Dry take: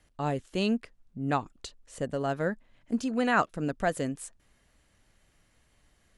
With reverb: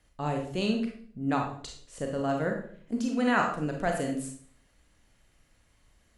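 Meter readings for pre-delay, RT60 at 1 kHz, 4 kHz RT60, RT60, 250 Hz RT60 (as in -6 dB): 30 ms, 0.50 s, 0.45 s, 0.55 s, 0.70 s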